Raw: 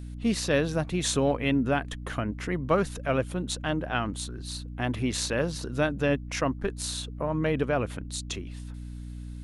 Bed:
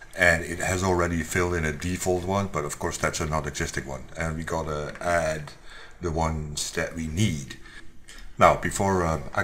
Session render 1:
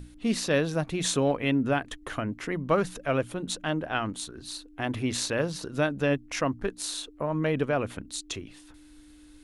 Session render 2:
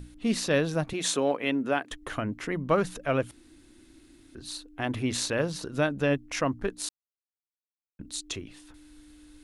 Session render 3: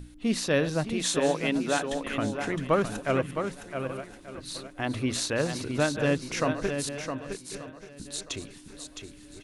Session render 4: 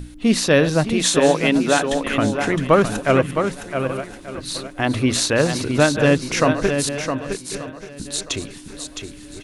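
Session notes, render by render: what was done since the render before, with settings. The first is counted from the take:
notches 60/120/180/240 Hz
0.93–1.91 HPF 270 Hz; 3.31–4.35 room tone; 6.89–7.99 mute
regenerating reverse delay 0.592 s, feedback 52%, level -12.5 dB; echo 0.663 s -7 dB
gain +10 dB; limiter -3 dBFS, peak gain reduction 2.5 dB

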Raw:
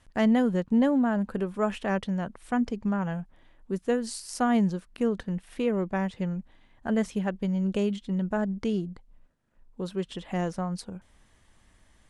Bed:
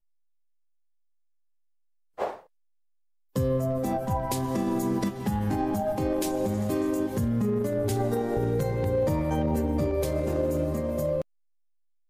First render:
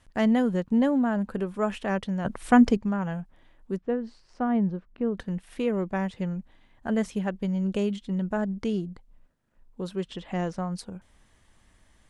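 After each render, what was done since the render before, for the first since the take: 2.25–2.77 gain +9.5 dB; 3.76–5.17 tape spacing loss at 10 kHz 41 dB; 10.08–10.58 LPF 6800 Hz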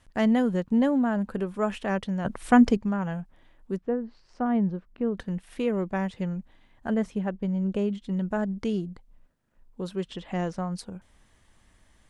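3.8–4.46 treble ducked by the level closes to 1600 Hz, closed at -26.5 dBFS; 6.94–8.02 high shelf 2400 Hz -10 dB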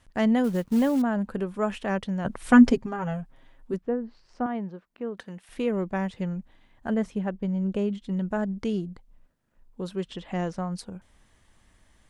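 0.44–1.02 companded quantiser 6-bit; 2.46–3.74 comb 7.5 ms, depth 69%; 4.46–5.49 HPF 530 Hz 6 dB/oct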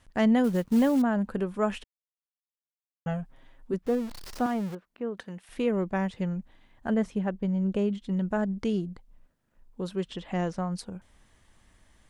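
1.84–3.06 mute; 3.86–4.75 zero-crossing step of -36.5 dBFS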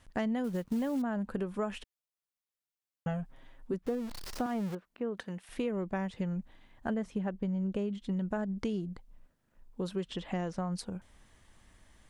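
compressor, threshold -30 dBFS, peak gain reduction 11 dB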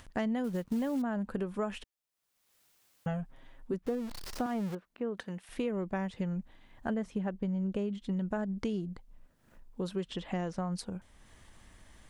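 upward compressor, threshold -48 dBFS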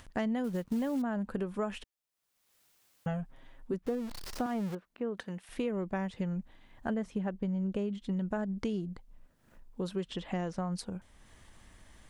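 nothing audible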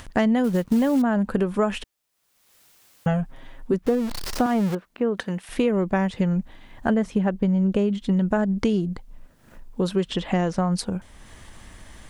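gain +12 dB

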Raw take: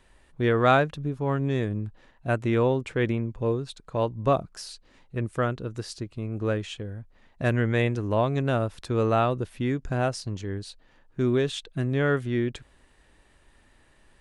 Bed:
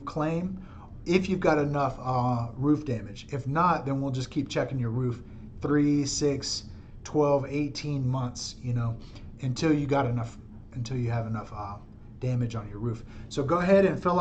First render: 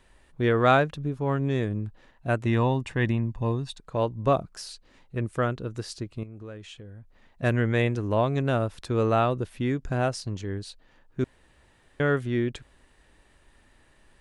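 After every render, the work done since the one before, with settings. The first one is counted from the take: 2.46–3.8 comb 1.1 ms, depth 53%; 6.23–7.43 compressor 2.5:1, threshold -44 dBFS; 11.24–12 room tone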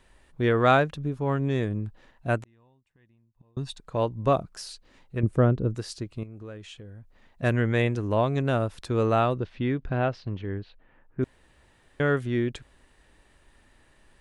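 2.42–3.57 flipped gate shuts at -27 dBFS, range -38 dB; 5.23–5.75 tilt shelf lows +9 dB, about 870 Hz; 9.37–11.22 LPF 5100 Hz -> 2200 Hz 24 dB/oct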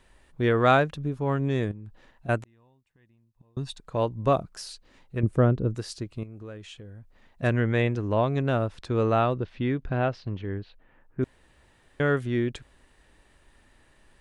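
1.71–2.29 compressor 8:1, threshold -37 dBFS; 7.47–9.48 air absorption 64 m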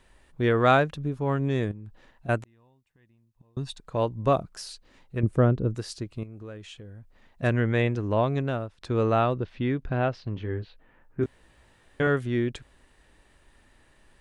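8.33–8.81 fade out, to -18.5 dB; 10.35–12.07 doubler 18 ms -5.5 dB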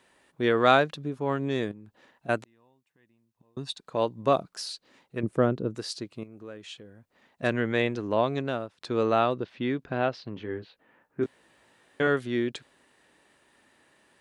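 HPF 200 Hz 12 dB/oct; dynamic EQ 4200 Hz, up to +6 dB, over -53 dBFS, Q 1.8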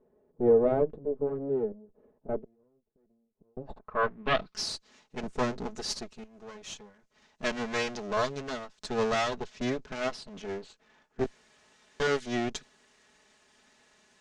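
minimum comb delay 4.7 ms; low-pass sweep 460 Hz -> 6500 Hz, 3.5–4.66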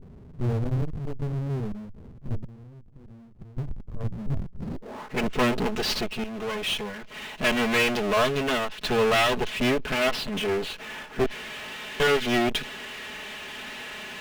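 low-pass sweep 110 Hz -> 2900 Hz, 4.56–5.2; power-law curve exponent 0.5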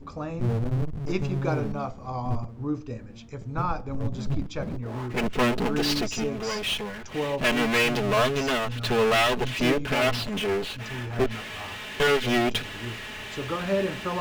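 add bed -5.5 dB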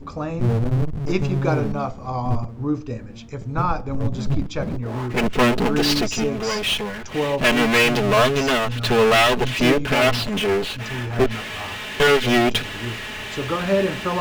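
gain +6 dB

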